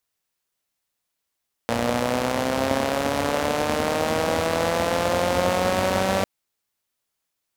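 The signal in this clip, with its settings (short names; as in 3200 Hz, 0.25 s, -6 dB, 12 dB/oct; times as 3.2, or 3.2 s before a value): four-cylinder engine model, changing speed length 4.55 s, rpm 3500, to 5800, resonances 97/240/520 Hz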